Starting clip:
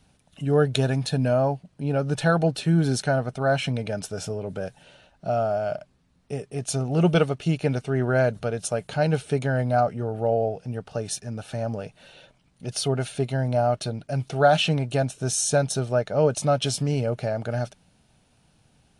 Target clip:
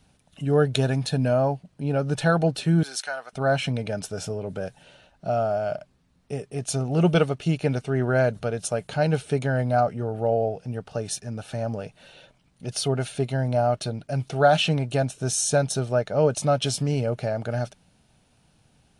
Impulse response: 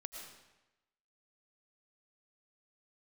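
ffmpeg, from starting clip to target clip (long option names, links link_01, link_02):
-filter_complex "[0:a]asettb=1/sr,asplit=3[link_01][link_02][link_03];[link_01]atrim=end=2.834[link_04];[link_02]atrim=start=2.83:end=3.33,asetpts=PTS-STARTPTS,afade=type=in:duration=0.004:curve=qsin,afade=type=out:start_time=0.496:duration=0.004:curve=qsin,highpass=1100[link_05];[link_03]atrim=start=3.326[link_06];[link_04][link_05]acrossfade=duration=0.004:curve1=hsin:curve2=qsin[link_07];[link_07][link_06]acrossfade=duration=0.004:curve1=qsin:curve2=hsin"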